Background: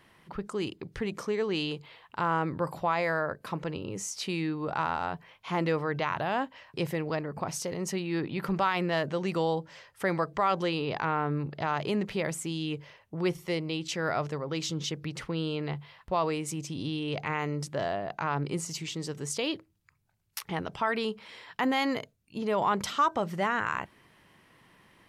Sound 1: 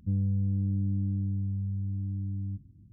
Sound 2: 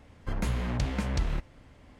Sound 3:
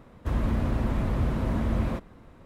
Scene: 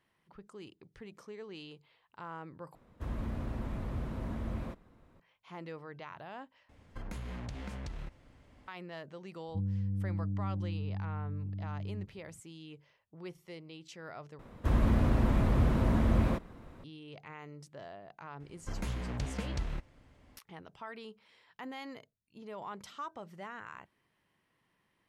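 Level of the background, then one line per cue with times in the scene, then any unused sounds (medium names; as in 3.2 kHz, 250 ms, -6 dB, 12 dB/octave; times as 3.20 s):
background -16.5 dB
2.75 s: replace with 3 -11 dB
6.69 s: replace with 2 -6 dB + compression, threshold -31 dBFS
9.48 s: add 1 -6 dB
14.39 s: replace with 3 -0.5 dB
18.40 s: add 2 -7 dB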